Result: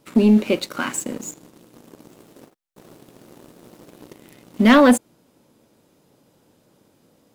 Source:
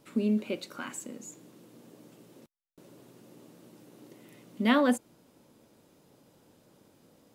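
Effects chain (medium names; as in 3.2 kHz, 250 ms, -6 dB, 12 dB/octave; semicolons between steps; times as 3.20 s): waveshaping leveller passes 2; 1.97–4.26 s: ever faster or slower copies 114 ms, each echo +3 st, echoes 2, each echo -6 dB; trim +6.5 dB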